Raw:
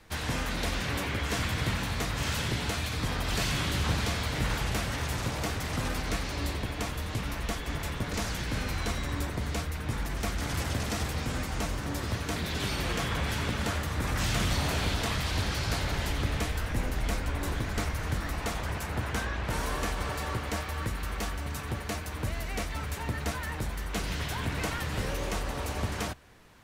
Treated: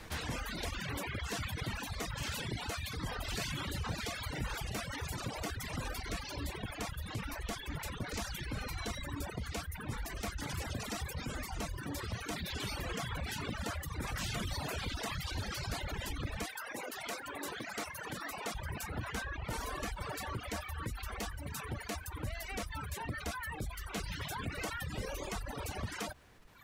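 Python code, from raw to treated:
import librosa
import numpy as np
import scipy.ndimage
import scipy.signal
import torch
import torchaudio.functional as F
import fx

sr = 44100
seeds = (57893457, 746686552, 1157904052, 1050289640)

y = fx.dereverb_blind(x, sr, rt60_s=1.5)
y = fx.highpass(y, sr, hz=fx.line((16.45, 470.0), (18.53, 210.0)), slope=12, at=(16.45, 18.53), fade=0.02)
y = fx.dereverb_blind(y, sr, rt60_s=1.0)
y = fx.env_flatten(y, sr, amount_pct=50)
y = y * librosa.db_to_amplitude(-7.5)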